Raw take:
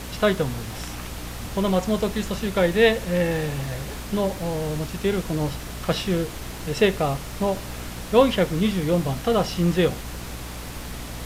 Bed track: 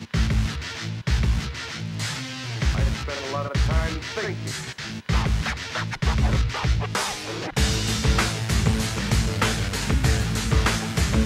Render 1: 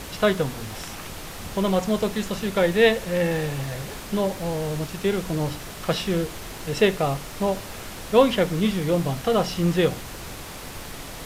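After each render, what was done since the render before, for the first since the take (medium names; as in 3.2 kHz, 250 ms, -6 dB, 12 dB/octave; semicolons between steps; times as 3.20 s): hum notches 60/120/180/240/300 Hz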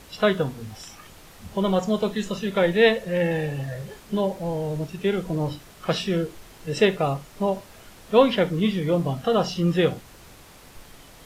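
noise print and reduce 11 dB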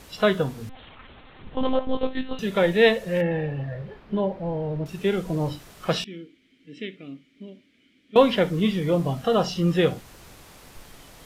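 0.69–2.39 s: monotone LPC vocoder at 8 kHz 260 Hz; 3.21–4.86 s: distance through air 370 m; 6.04–8.16 s: vowel filter i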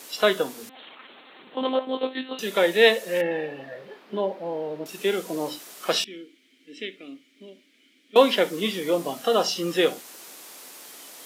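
high-pass 260 Hz 24 dB/octave; treble shelf 4.3 kHz +11.5 dB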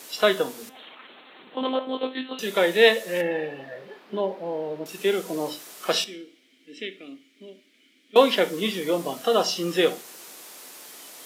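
two-slope reverb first 0.42 s, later 1.8 s, from -27 dB, DRR 13.5 dB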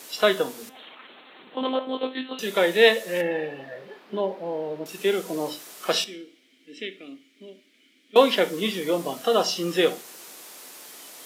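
no audible change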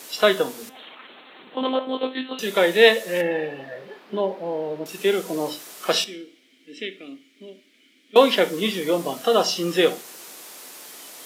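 trim +2.5 dB; peak limiter -2 dBFS, peak gain reduction 1 dB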